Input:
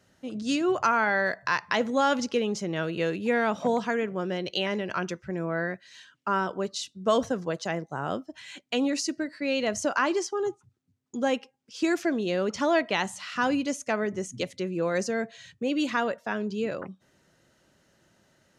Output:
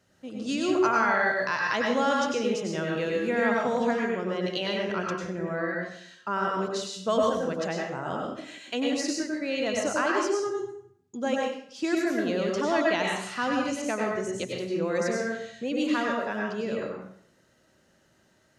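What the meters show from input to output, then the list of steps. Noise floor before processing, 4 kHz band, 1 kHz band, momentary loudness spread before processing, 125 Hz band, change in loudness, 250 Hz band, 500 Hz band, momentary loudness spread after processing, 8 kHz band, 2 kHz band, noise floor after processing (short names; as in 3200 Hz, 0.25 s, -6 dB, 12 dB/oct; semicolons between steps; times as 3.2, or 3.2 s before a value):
-67 dBFS, -0.5 dB, 0.0 dB, 9 LU, -0.5 dB, +0.5 dB, 0.0 dB, +1.0 dB, 9 LU, -0.5 dB, +0.5 dB, -65 dBFS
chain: plate-style reverb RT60 0.63 s, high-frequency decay 0.8×, pre-delay 85 ms, DRR -1.5 dB; gain -3.5 dB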